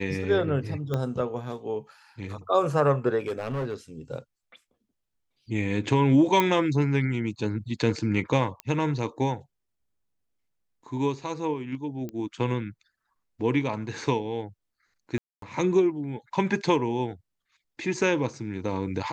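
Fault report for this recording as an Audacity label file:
0.940000	0.940000	pop -16 dBFS
3.260000	3.740000	clipped -25.5 dBFS
6.400000	6.400000	pop -8 dBFS
8.600000	8.600000	pop -18 dBFS
12.090000	12.090000	pop -24 dBFS
15.180000	15.420000	gap 0.243 s

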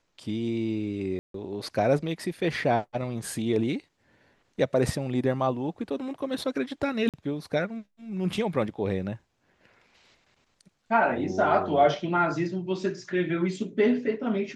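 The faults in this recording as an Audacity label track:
1.190000	1.340000	gap 0.153 s
7.090000	7.140000	gap 47 ms

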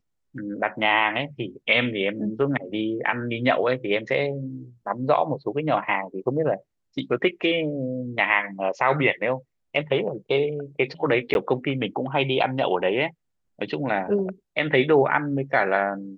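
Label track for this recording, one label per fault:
11.340000	11.350000	gap 11 ms

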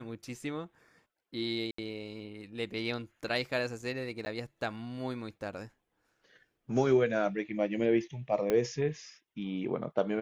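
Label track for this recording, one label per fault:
1.710000	1.780000	gap 74 ms
4.250000	4.260000	gap 10 ms
8.500000	8.500000	pop -16 dBFS

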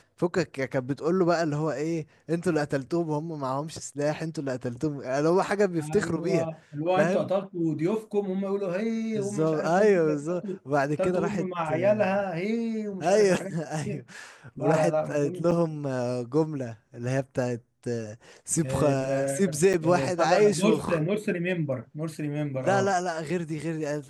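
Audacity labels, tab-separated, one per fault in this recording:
15.510000	15.520000	gap 6.8 ms
19.730000	19.740000	gap 8.2 ms

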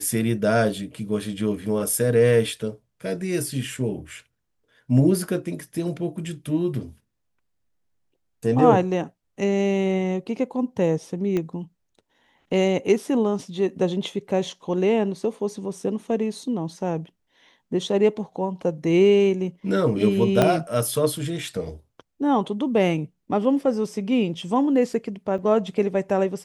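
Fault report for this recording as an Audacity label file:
11.370000	11.370000	pop -14 dBFS
20.420000	20.420000	pop -5 dBFS
25.380000	25.380000	gap 4.5 ms

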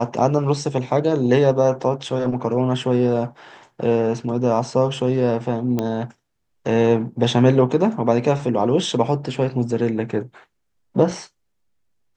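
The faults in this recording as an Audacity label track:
5.790000	5.790000	pop -10 dBFS

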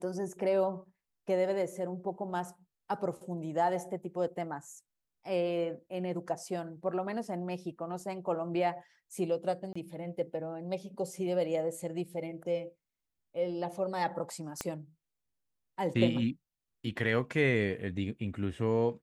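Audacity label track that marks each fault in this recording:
9.730000	9.760000	gap 25 ms
14.610000	14.610000	pop -18 dBFS

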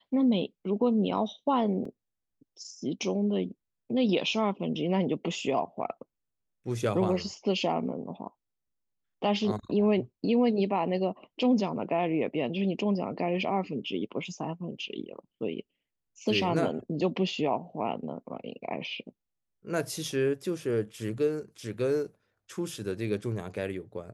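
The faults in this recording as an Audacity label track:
1.850000	1.850000	gap 3.8 ms

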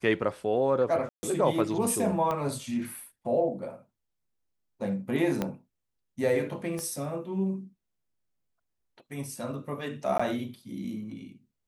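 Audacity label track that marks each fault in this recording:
1.090000	1.230000	gap 0.14 s
2.310000	2.310000	pop -18 dBFS
5.420000	5.420000	pop -15 dBFS
6.790000	6.790000	pop -23 dBFS
10.180000	10.200000	gap 15 ms

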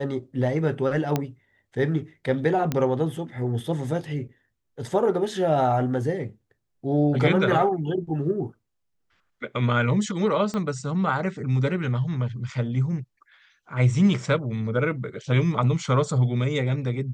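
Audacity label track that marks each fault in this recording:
1.160000	1.160000	pop -10 dBFS
2.720000	2.720000	pop -12 dBFS
10.540000	10.540000	pop -18 dBFS

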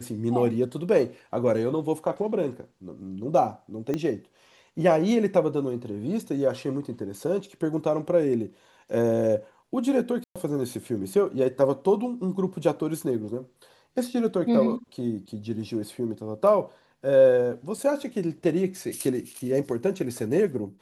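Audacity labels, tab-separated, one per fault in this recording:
3.940000	3.940000	pop -16 dBFS
10.240000	10.360000	gap 0.116 s
17.780000	17.780000	gap 3.6 ms

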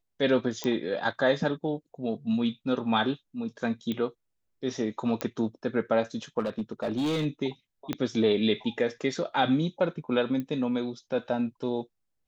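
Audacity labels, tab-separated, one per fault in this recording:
0.640000	0.640000	pop -17 dBFS
3.920000	3.920000	pop -20 dBFS
5.210000	5.210000	pop -14 dBFS
6.390000	7.260000	clipped -24.5 dBFS
7.930000	7.930000	pop -15 dBFS
10.400000	10.400000	pop -22 dBFS

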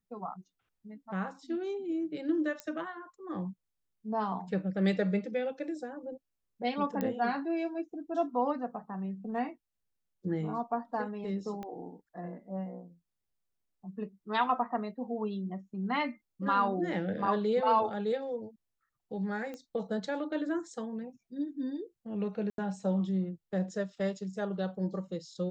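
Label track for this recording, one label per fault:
2.600000	2.600000	pop -22 dBFS
7.010000	7.010000	pop -20 dBFS
11.630000	11.630000	pop -28 dBFS
19.540000	19.540000	pop -29 dBFS
22.500000	22.580000	gap 82 ms

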